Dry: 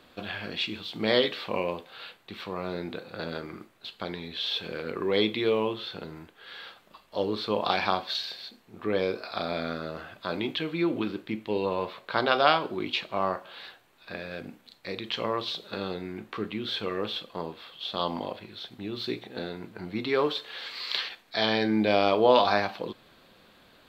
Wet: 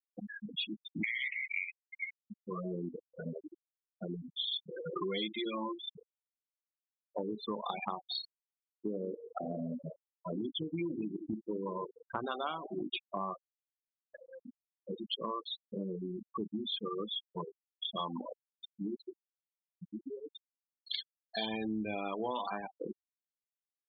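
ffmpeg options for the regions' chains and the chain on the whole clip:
-filter_complex "[0:a]asettb=1/sr,asplit=3[a][b][c];[a]atrim=end=1.034[d];[b]atrim=start=1.03:end=2.21,asetpts=PTS-STARTPTS,afade=t=in:d=0.004:c=qsin,afade=t=out:st=1.176:d=0.004:c=qsin,highpass=f=2.1k:t=q:w=15,acompressor=threshold=-18dB:ratio=12:attack=3.2:release=140:knee=1:detection=peak,highshelf=f=4.6k:g=-8[e];[c]atrim=start=2.206[f];[d][e]acrossfade=d=0.004:c1=hsin:c2=qsin[g];[g][f]acrossfade=d=0.004:c1=qsin:c2=hsin,asettb=1/sr,asplit=3[h][i][j];[h]atrim=end=4.764[k];[i]atrim=start=4.76:end=5.82,asetpts=PTS-STARTPTS,afade=t=in:d=0.004:c=qsin,afade=t=out:st=1.056:d=0.004:c=qsin,lowshelf=f=470:g=-4,aecho=1:1:5.7:0.85,atrim=end_sample=46746[l];[j]atrim=start=5.816[m];[k][l]acrossfade=d=0.004:c1=hsin:c2=qsin[n];[n][m]acrossfade=d=0.004:c1=qsin:c2=hsin,asettb=1/sr,asplit=3[o][p][q];[o]atrim=end=7.554[r];[p]atrim=start=7.55:end=13.28,asetpts=PTS-STARTPTS,afade=t=in:d=0.004:c=qsin,afade=t=out:st=5.726:d=0.004:c=qsin,equalizer=f=1.7k:w=0.87:g=-4,asplit=2[s][t];[t]adelay=173,lowpass=f=1.4k:p=1,volume=-13dB,asplit=2[u][v];[v]adelay=173,lowpass=f=1.4k:p=1,volume=0.54,asplit=2[w][x];[x]adelay=173,lowpass=f=1.4k:p=1,volume=0.54,asplit=2[y][z];[z]adelay=173,lowpass=f=1.4k:p=1,volume=0.54,asplit=2[aa][ab];[ab]adelay=173,lowpass=f=1.4k:p=1,volume=0.54,asplit=2[ac][ad];[ad]adelay=173,lowpass=f=1.4k:p=1,volume=0.54[ae];[s][u][w][y][aa][ac][ae]amix=inputs=7:normalize=0,atrim=end_sample=252693[af];[q]atrim=start=13.276[ag];[r][af]acrossfade=d=0.004:c1=hsin:c2=qsin[ah];[ah][ag]acrossfade=d=0.004:c1=qsin:c2=hsin,asettb=1/sr,asplit=3[ai][aj][ak];[ai]atrim=end=19.024[al];[aj]atrim=start=19.02:end=20.87,asetpts=PTS-STARTPTS,afade=t=in:d=0.004:c=qsin,afade=t=out:st=1.846:d=0.004:c=qsin,bandreject=f=50:t=h:w=6,bandreject=f=100:t=h:w=6,bandreject=f=150:t=h:w=6,bandreject=f=200:t=h:w=6,acompressor=threshold=-36dB:ratio=6:attack=3.2:release=140:knee=1:detection=peak,aeval=exprs='val(0)*gte(abs(val(0)),0.00422)':c=same[am];[ak]atrim=start=20.866[an];[al][am]acrossfade=d=0.004:c1=hsin:c2=qsin[ao];[ao][an]acrossfade=d=0.004:c1=qsin:c2=hsin,afftfilt=real='re*gte(hypot(re,im),0.0891)':imag='im*gte(hypot(re,im),0.0891)':win_size=1024:overlap=0.75,aecho=1:1:0.9:0.49,acompressor=threshold=-35dB:ratio=6,volume=1dB"

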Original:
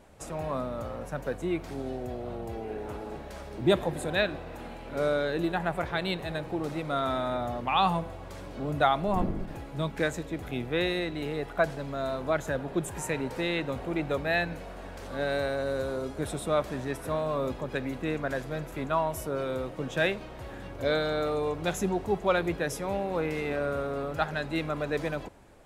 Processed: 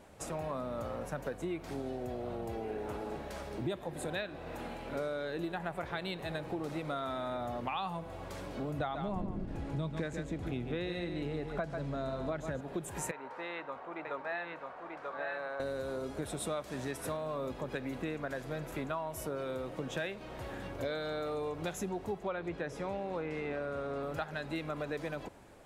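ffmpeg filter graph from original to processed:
-filter_complex "[0:a]asettb=1/sr,asplit=3[a][b][c];[a]atrim=end=8.794[d];[b]atrim=start=8.79:end=12.61,asetpts=PTS-STARTPTS,afade=t=in:d=0.004:c=qsin,afade=t=out:st=3.816:d=0.004:c=qsin,lowpass=8.9k,lowshelf=f=320:g=9.5,aecho=1:1:141:0.376,atrim=end_sample=168462[e];[c]atrim=start=12.606[f];[d][e]acrossfade=d=0.004:c1=hsin:c2=qsin[g];[g][f]acrossfade=d=0.004:c1=qsin:c2=hsin,asettb=1/sr,asplit=3[h][i][j];[h]atrim=end=13.114[k];[i]atrim=start=13.11:end=15.6,asetpts=PTS-STARTPTS,afade=t=in:d=0.004:c=qsin,afade=t=out:st=2.486:d=0.004:c=qsin,bandpass=f=1.1k:t=q:w=1.8,aecho=1:1:939:0.631,atrim=end_sample=109809[l];[j]atrim=start=15.596[m];[k][l]acrossfade=d=0.004:c1=hsin:c2=qsin[n];[n][m]acrossfade=d=0.004:c1=qsin:c2=hsin,asettb=1/sr,asplit=3[o][p][q];[o]atrim=end=16.404[r];[p]atrim=start=16.4:end=17.17,asetpts=PTS-STARTPTS,afade=t=in:d=0.004:c=qsin,afade=t=out:st=0.766:d=0.004:c=qsin,highpass=45,equalizer=f=7.6k:w=0.45:g=5.5[s];[q]atrim=start=17.166[t];[r][s]acrossfade=d=0.004:c1=hsin:c2=qsin[u];[u][t]acrossfade=d=0.004:c1=qsin:c2=hsin,asettb=1/sr,asplit=3[v][w][x];[v]atrim=end=22.234[y];[w]atrim=start=22.23:end=24.03,asetpts=PTS-STARTPTS,afade=t=in:d=0.004:c=qsin,afade=t=out:st=1.796:d=0.004:c=qsin,lowpass=7.6k,acrossover=split=2700[z][aa];[aa]acompressor=threshold=-49dB:ratio=4:attack=1:release=60[ab];[z][ab]amix=inputs=2:normalize=0[ac];[x]atrim=start=24.026[ad];[y][ac]acrossfade=d=0.004:c1=hsin:c2=qsin[ae];[ae][ad]acrossfade=d=0.004:c1=qsin:c2=hsin,lowshelf=f=65:g=-7.5,acompressor=threshold=-34dB:ratio=6"

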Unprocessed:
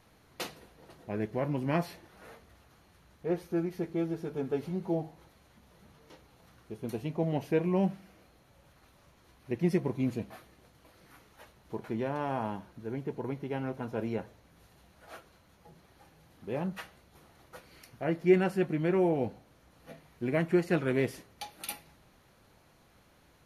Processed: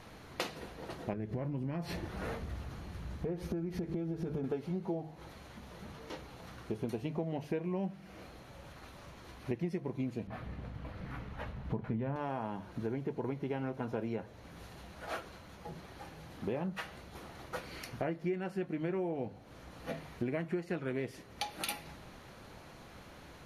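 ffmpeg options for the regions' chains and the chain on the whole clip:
-filter_complex "[0:a]asettb=1/sr,asplit=3[a][b][c];[a]atrim=end=1.134[d];[b]atrim=start=1.13:end=4.44,asetpts=PTS-STARTPTS,afade=t=in:d=0.004:c=qsin,afade=t=out:st=3.306:d=0.004:c=qsin,lowshelf=f=250:g=12,acompressor=threshold=-38dB:ratio=4:attack=3.2:release=140:knee=1:detection=peak[e];[c]atrim=start=4.436[f];[d][e]acrossfade=d=0.004:c1=hsin:c2=qsin[g];[g][f]acrossfade=d=0.004:c1=qsin:c2=hsin,asettb=1/sr,asplit=3[h][i][j];[h]atrim=end=10.274[k];[i]atrim=start=10.27:end=12.16,asetpts=PTS-STARTPTS,afade=t=in:d=0.004:c=qsin,afade=t=out:st=1.886:d=0.004:c=qsin,bass=f=250:g=11,treble=f=4k:g=-14,bandreject=f=350:w=5.8[l];[j]atrim=start=12.156[m];[k][l]acrossfade=d=0.004:c1=hsin:c2=qsin[n];[n][m]acrossfade=d=0.004:c1=qsin:c2=hsin,highshelf=f=9.6k:g=-11,bandreject=f=50:t=h:w=6,bandreject=f=100:t=h:w=6,bandreject=f=150:t=h:w=6,acompressor=threshold=-44dB:ratio=8,volume=10.5dB"

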